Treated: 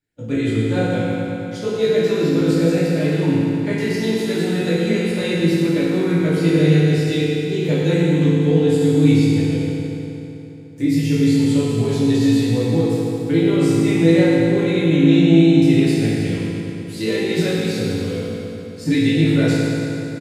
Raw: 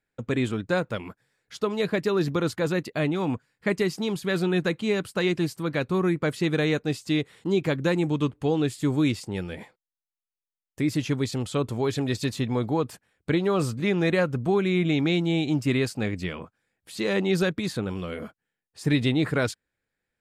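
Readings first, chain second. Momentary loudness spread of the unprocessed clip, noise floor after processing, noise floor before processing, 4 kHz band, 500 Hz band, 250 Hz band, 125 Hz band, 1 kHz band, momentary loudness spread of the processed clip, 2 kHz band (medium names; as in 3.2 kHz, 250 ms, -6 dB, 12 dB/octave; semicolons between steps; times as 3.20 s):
9 LU, -31 dBFS, under -85 dBFS, +6.0 dB, +7.5 dB, +10.5 dB, +10.5 dB, +1.0 dB, 11 LU, +4.0 dB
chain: coarse spectral quantiser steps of 15 dB; peaking EQ 1.1 kHz -10 dB 0.99 oct; doubling 18 ms -3 dB; FDN reverb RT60 3.4 s, high-frequency decay 0.75×, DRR -9 dB; trim -3 dB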